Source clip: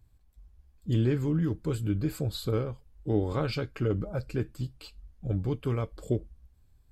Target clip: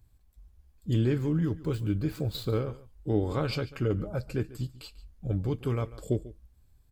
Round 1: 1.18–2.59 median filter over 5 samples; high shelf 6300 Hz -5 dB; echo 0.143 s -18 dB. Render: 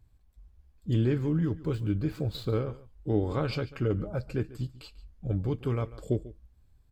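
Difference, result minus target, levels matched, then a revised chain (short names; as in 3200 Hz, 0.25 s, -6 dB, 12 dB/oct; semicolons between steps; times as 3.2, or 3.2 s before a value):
8000 Hz band -5.5 dB
1.18–2.59 median filter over 5 samples; high shelf 6300 Hz +4.5 dB; echo 0.143 s -18 dB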